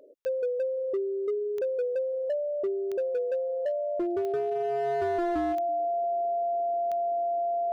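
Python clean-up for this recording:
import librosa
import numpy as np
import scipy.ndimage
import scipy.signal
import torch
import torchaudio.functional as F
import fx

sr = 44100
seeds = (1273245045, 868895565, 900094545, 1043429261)

y = fx.fix_declip(x, sr, threshold_db=-24.0)
y = fx.fix_declick_ar(y, sr, threshold=10.0)
y = fx.notch(y, sr, hz=690.0, q=30.0)
y = fx.fix_echo_inverse(y, sr, delay_ms=333, level_db=-23.0)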